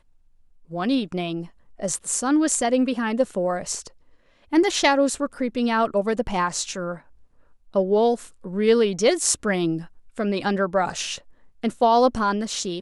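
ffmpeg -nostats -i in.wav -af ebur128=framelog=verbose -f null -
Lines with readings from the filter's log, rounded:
Integrated loudness:
  I:         -22.7 LUFS
  Threshold: -33.3 LUFS
Loudness range:
  LRA:         2.1 LU
  Threshold: -43.3 LUFS
  LRA low:   -24.4 LUFS
  LRA high:  -22.3 LUFS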